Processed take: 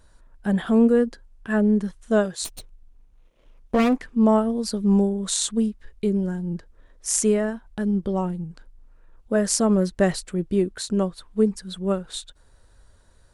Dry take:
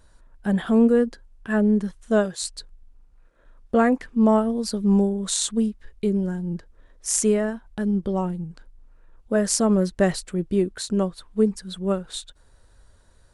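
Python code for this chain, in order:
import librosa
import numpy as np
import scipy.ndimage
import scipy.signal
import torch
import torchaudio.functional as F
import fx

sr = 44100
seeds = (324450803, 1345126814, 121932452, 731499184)

y = fx.lower_of_two(x, sr, delay_ms=0.31, at=(2.44, 3.96), fade=0.02)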